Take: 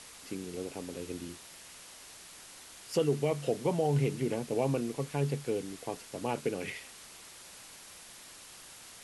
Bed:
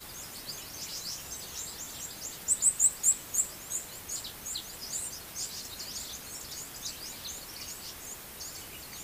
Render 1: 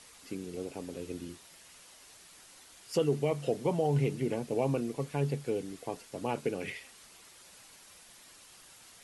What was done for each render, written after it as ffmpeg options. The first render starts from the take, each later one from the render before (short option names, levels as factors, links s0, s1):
-af "afftdn=nr=6:nf=-51"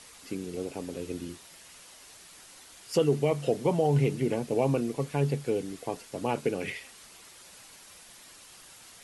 -af "volume=1.58"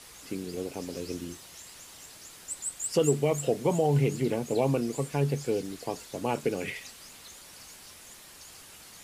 -filter_complex "[1:a]volume=0.316[s0];[0:a][s0]amix=inputs=2:normalize=0"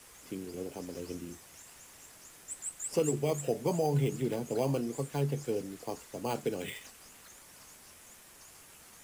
-filter_complex "[0:a]flanger=delay=2.2:depth=6.5:regen=-84:speed=1:shape=triangular,acrossover=split=190|600|4300[s0][s1][s2][s3];[s2]acrusher=samples=8:mix=1:aa=0.000001[s4];[s0][s1][s4][s3]amix=inputs=4:normalize=0"